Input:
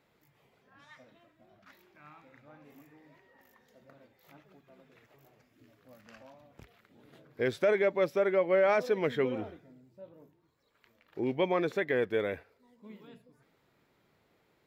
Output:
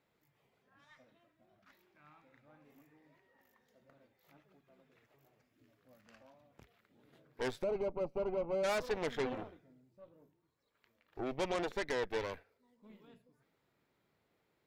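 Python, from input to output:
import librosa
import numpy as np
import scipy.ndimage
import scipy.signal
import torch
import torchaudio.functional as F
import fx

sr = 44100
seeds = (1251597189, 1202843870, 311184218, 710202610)

y = fx.cheby_harmonics(x, sr, harmonics=(8,), levels_db=(-14,), full_scale_db=-17.0)
y = fx.moving_average(y, sr, points=25, at=(7.62, 8.63), fade=0.02)
y = F.gain(torch.from_numpy(y), -8.0).numpy()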